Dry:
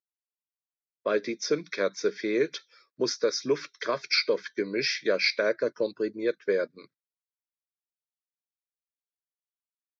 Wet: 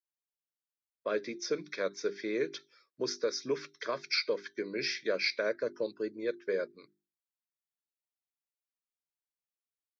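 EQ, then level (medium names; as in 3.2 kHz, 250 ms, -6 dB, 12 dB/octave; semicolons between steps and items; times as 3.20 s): hum notches 50/100/150/200/250/300/350/400 Hz; -6.0 dB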